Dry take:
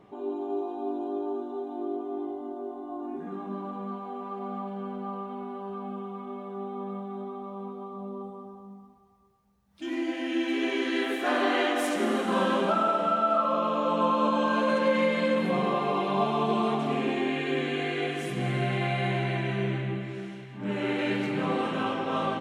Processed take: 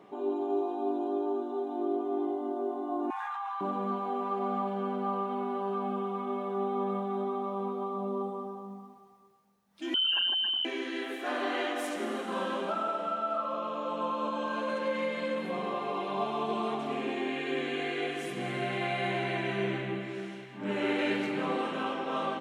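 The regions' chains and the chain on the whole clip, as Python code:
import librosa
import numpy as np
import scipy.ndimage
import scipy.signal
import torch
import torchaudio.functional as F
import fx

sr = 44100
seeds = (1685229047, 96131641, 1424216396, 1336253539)

y = fx.chain(x, sr, fx.brickwall_highpass(low_hz=750.0),
    fx.high_shelf(hz=6800.0, db=-9.0),
    fx.env_flatten(amount_pct=100), at=(3.1, 3.61))
y = fx.chain(y, sr, fx.envelope_sharpen(power=3.0),
    fx.freq_invert(carrier_hz=3400),
    fx.env_flatten(amount_pct=100), at=(9.94, 10.65))
y = scipy.signal.sosfilt(scipy.signal.butter(2, 230.0, 'highpass', fs=sr, output='sos'), y)
y = fx.rider(y, sr, range_db=10, speed_s=2.0)
y = y * librosa.db_to_amplitude(-4.0)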